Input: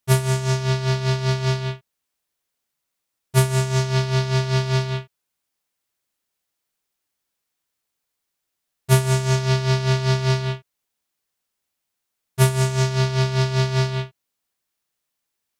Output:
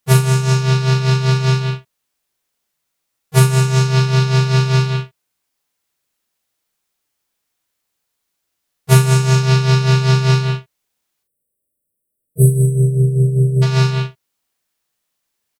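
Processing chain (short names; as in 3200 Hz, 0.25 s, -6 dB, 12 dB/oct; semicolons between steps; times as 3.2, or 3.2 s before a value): harmoniser +3 st -16 dB; spectral delete 11.23–13.62, 640–7800 Hz; doubler 39 ms -5 dB; gain +4 dB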